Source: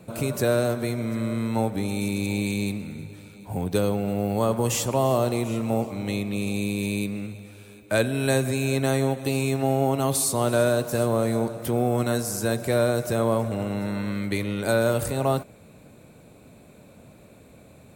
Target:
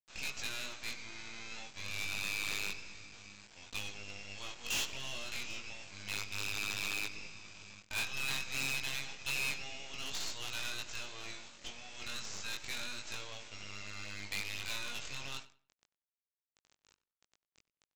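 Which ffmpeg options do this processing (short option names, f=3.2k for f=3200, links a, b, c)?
-filter_complex "[0:a]acrossover=split=5200[a][b];[b]alimiter=limit=-23.5dB:level=0:latency=1:release=284[c];[a][c]amix=inputs=2:normalize=0,highpass=f=2.7k:t=q:w=3.2,aresample=16000,acrusher=bits=5:dc=4:mix=0:aa=0.000001,aresample=44100,flanger=delay=19:depth=2.7:speed=0.29,asoftclip=type=hard:threshold=-32dB,asplit=2[d][e];[e]adelay=94,lowpass=f=3.6k:p=1,volume=-17dB,asplit=2[f][g];[g]adelay=94,lowpass=f=3.6k:p=1,volume=0.27,asplit=2[h][i];[i]adelay=94,lowpass=f=3.6k:p=1,volume=0.27[j];[d][f][h][j]amix=inputs=4:normalize=0"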